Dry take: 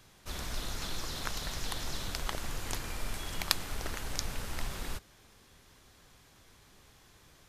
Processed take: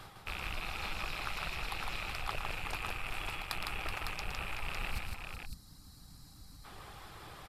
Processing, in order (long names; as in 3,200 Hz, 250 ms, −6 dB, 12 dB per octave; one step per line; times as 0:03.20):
loose part that buzzes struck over −48 dBFS, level −22 dBFS
gain on a spectral selection 0:04.90–0:06.65, 320–3,800 Hz −17 dB
reversed playback
downward compressor 16 to 1, threshold −43 dBFS, peak gain reduction 23.5 dB
reversed playback
high-shelf EQ 11,000 Hz −8.5 dB
reverb reduction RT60 1.1 s
thirty-one-band graphic EQ 250 Hz −6 dB, 800 Hz +8 dB, 1,250 Hz +8 dB, 6,300 Hz −10 dB, 12,500 Hz +5 dB
on a send: multi-tap delay 114/157/376/555 ms −8.5/−3.5/−9/−5 dB
on the sum: highs frequency-modulated by the lows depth 0.27 ms
level +9 dB